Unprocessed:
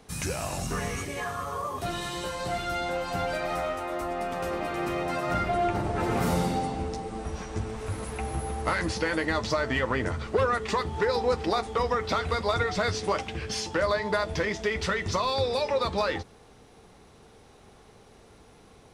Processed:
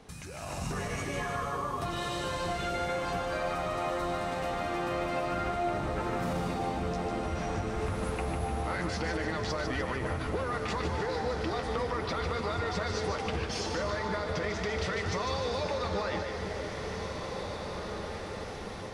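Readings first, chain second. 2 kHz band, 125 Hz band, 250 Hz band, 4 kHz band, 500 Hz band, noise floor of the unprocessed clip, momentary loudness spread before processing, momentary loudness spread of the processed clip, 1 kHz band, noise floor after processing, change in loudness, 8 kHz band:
-4.0 dB, -2.0 dB, -3.0 dB, -4.0 dB, -4.0 dB, -54 dBFS, 7 LU, 5 LU, -3.5 dB, -39 dBFS, -4.0 dB, -5.0 dB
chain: peak limiter -23.5 dBFS, peak gain reduction 9 dB; compression 4:1, threshold -44 dBFS, peak gain reduction 13.5 dB; two-band feedback delay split 780 Hz, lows 511 ms, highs 149 ms, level -6 dB; level rider gain up to 10 dB; treble shelf 8.2 kHz -9.5 dB; echo that smears into a reverb 1968 ms, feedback 53%, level -7 dB

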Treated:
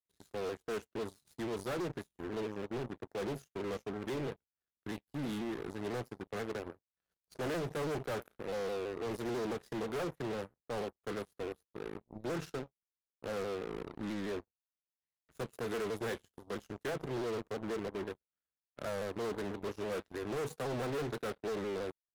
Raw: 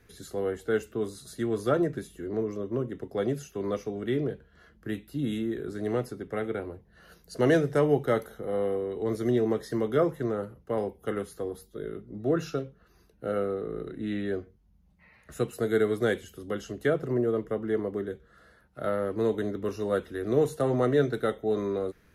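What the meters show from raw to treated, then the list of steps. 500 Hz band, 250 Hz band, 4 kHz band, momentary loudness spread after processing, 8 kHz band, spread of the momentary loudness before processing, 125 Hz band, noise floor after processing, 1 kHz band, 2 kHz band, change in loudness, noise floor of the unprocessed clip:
-10.5 dB, -10.5 dB, -2.5 dB, 8 LU, -4.0 dB, 11 LU, -10.5 dB, under -85 dBFS, -6.0 dB, -6.5 dB, -10.0 dB, -62 dBFS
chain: overload inside the chain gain 31 dB; power-law waveshaper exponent 3; vibrato with a chosen wave saw down 6.1 Hz, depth 100 cents; trim -3 dB

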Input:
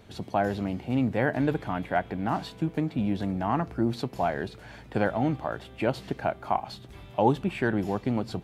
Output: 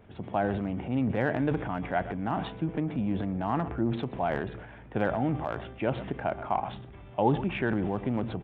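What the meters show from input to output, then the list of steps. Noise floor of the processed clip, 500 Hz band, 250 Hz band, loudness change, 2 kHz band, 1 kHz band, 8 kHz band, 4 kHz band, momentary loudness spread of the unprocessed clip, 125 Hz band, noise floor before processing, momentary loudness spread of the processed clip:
-48 dBFS, -2.0 dB, -1.5 dB, -1.5 dB, -2.0 dB, -2.0 dB, no reading, -4.0 dB, 7 LU, -1.0 dB, -48 dBFS, 6 LU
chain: local Wiener filter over 9 samples; resampled via 8 kHz; on a send: delay 125 ms -21.5 dB; on the sum: transient shaper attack 0 dB, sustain +8 dB; trim -2.5 dB

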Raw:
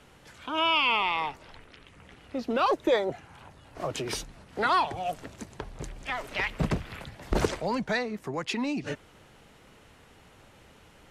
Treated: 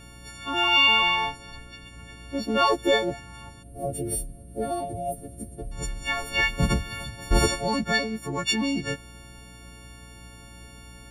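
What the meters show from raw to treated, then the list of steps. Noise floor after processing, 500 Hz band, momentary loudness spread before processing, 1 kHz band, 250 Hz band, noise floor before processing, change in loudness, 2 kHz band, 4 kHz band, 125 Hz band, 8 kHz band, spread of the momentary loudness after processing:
-46 dBFS, +2.0 dB, 17 LU, +1.0 dB, +3.5 dB, -56 dBFS, +4.0 dB, +6.0 dB, +7.0 dB, +5.5 dB, +10.0 dB, 22 LU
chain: partials quantised in pitch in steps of 4 st; bass shelf 190 Hz +11 dB; hum 60 Hz, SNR 21 dB; time-frequency box 3.63–5.72 s, 740–8500 Hz -23 dB

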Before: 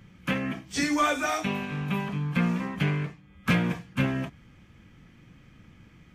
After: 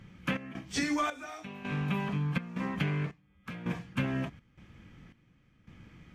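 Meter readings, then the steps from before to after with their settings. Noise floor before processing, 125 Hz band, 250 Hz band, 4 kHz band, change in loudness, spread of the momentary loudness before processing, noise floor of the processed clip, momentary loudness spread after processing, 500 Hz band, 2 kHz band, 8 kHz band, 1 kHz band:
-55 dBFS, -4.5 dB, -6.0 dB, -6.0 dB, -6.0 dB, 7 LU, -66 dBFS, 10 LU, -7.0 dB, -7.0 dB, -6.5 dB, -7.0 dB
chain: treble shelf 8.3 kHz -7 dB; compression 6:1, threshold -27 dBFS, peak gain reduction 8 dB; trance gate "xx.xxx...xx" 82 bpm -12 dB

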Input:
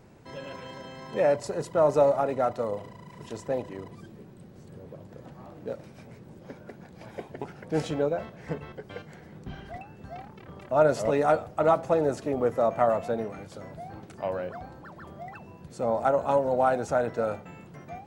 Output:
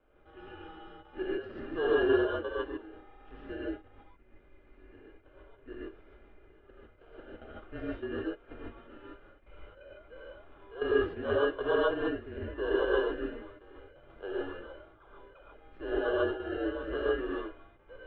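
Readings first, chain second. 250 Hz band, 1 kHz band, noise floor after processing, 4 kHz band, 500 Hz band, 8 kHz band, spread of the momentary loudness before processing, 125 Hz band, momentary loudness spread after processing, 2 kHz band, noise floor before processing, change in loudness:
-2.5 dB, -12.0 dB, -60 dBFS, +2.0 dB, -6.0 dB, under -30 dB, 22 LU, -11.0 dB, 22 LU, +2.0 dB, -50 dBFS, -5.5 dB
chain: peaking EQ 300 Hz -13 dB 0.27 oct; static phaser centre 920 Hz, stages 4; in parallel at -3.5 dB: sample-and-hold 18×; on the sum: trance gate "xxxxx.x." 86 bpm -12 dB; ten-band graphic EQ 125 Hz -10 dB, 250 Hz +4 dB, 1 kHz -11 dB, 2 kHz +4 dB; gated-style reverb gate 170 ms rising, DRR -6.5 dB; mistuned SSB -190 Hz 190–2900 Hz; trim -7 dB

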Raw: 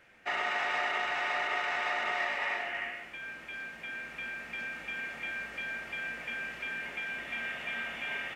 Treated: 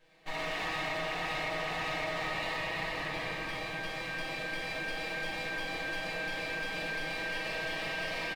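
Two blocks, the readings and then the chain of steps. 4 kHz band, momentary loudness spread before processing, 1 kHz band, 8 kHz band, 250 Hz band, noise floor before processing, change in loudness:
+3.0 dB, 9 LU, -1.5 dB, +5.0 dB, +7.5 dB, -48 dBFS, -0.5 dB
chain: comb filter that takes the minimum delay 6.4 ms; level rider gain up to 8 dB; peaking EQ 620 Hz +4.5 dB 1 oct; band-stop 1.4 kHz, Q 6.3; comb 6.1 ms, depth 42%; echo whose repeats swap between lows and highs 112 ms, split 2.4 kHz, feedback 85%, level -10 dB; simulated room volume 120 m³, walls hard, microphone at 0.65 m; compression, threshold -25 dBFS, peak gain reduction 10 dB; trim -7 dB

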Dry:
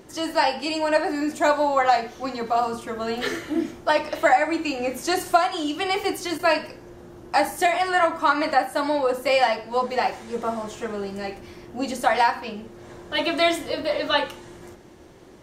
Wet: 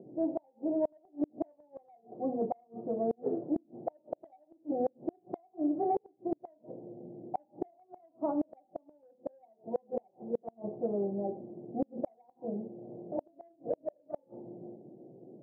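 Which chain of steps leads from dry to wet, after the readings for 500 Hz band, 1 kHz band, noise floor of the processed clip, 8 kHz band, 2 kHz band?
-12.0 dB, -20.0 dB, -70 dBFS, under -40 dB, under -40 dB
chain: Chebyshev band-pass 130–740 Hz, order 4; level-controlled noise filter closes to 560 Hz, open at -17.5 dBFS; in parallel at -8 dB: saturation -16.5 dBFS, distortion -16 dB; on the sum: inverted gate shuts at -16 dBFS, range -37 dB; trim -4.5 dB

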